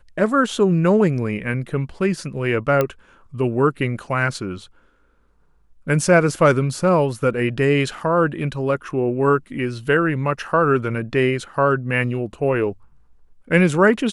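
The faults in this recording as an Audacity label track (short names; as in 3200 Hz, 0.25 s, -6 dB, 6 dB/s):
2.810000	2.810000	pop -7 dBFS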